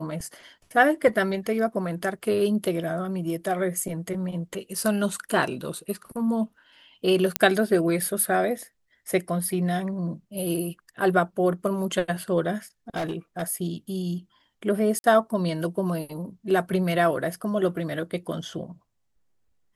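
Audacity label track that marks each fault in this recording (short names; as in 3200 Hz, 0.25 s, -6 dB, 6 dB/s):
7.360000	7.360000	pop -2 dBFS
12.960000	13.430000	clipped -24.5 dBFS
14.990000	15.040000	gap 51 ms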